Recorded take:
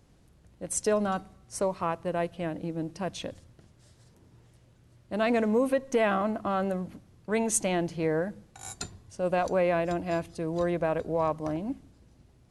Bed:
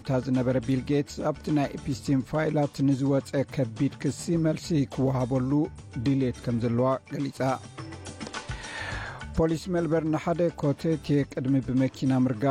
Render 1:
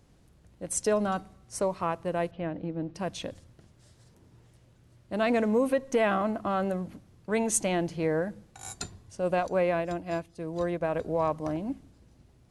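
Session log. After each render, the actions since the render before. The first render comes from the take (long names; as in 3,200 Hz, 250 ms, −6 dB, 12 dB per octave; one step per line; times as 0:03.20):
0:02.31–0:02.95: high-frequency loss of the air 250 metres
0:09.40–0:10.94: expander for the loud parts, over −42 dBFS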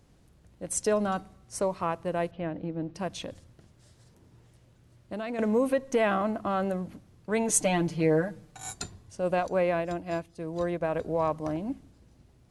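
0:03.07–0:05.39: downward compressor, threshold −31 dBFS
0:07.48–0:08.71: comb filter 6.7 ms, depth 85%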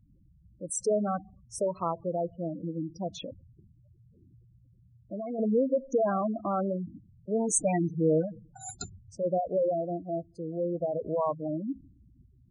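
gate on every frequency bin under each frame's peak −10 dB strong
notch filter 1,700 Hz, Q 5.3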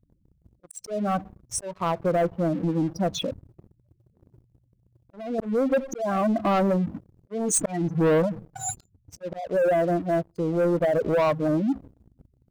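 volume swells 415 ms
leveller curve on the samples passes 3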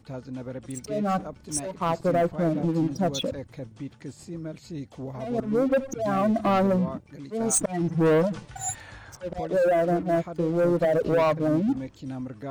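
mix in bed −11 dB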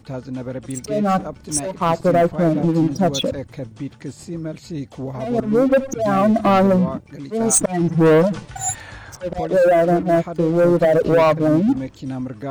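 level +7.5 dB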